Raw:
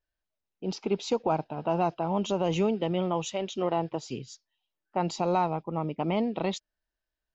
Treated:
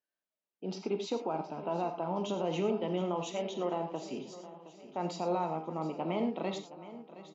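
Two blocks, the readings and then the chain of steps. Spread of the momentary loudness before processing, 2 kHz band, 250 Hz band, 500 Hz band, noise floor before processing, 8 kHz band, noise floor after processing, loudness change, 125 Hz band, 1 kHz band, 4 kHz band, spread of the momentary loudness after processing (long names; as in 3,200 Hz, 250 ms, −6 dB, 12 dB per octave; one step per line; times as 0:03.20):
10 LU, −6.0 dB, −5.5 dB, −4.5 dB, below −85 dBFS, can't be measured, below −85 dBFS, −5.5 dB, −7.5 dB, −6.0 dB, −6.0 dB, 15 LU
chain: high-pass filter 180 Hz 24 dB per octave
high-shelf EQ 4,400 Hz −7 dB
brickwall limiter −20 dBFS, peak gain reduction 6 dB
repeating echo 718 ms, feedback 50%, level −15.5 dB
reverb whose tail is shaped and stops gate 130 ms flat, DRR 5.5 dB
level −4 dB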